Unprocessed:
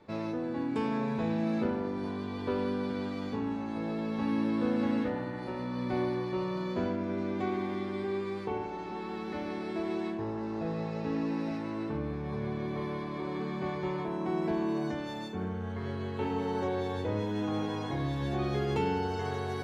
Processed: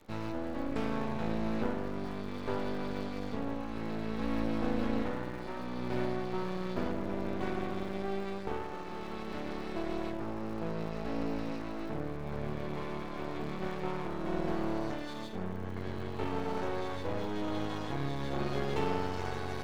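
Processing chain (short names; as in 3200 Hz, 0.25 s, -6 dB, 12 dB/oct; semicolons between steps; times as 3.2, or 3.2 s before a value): half-wave rectifier; crackle 100/s -50 dBFS; gain +1.5 dB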